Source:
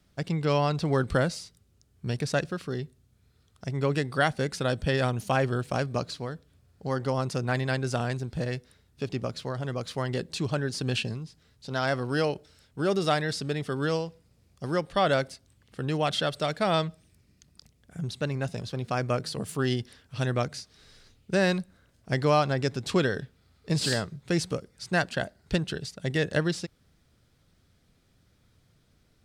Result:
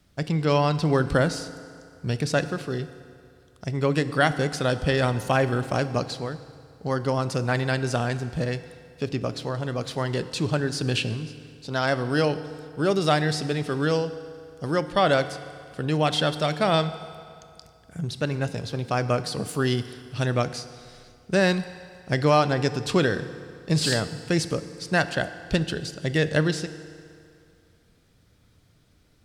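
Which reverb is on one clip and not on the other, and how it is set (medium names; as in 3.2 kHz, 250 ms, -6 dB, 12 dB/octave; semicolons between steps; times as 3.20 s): FDN reverb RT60 2.4 s, low-frequency decay 0.85×, high-frequency decay 0.8×, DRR 11.5 dB; trim +3.5 dB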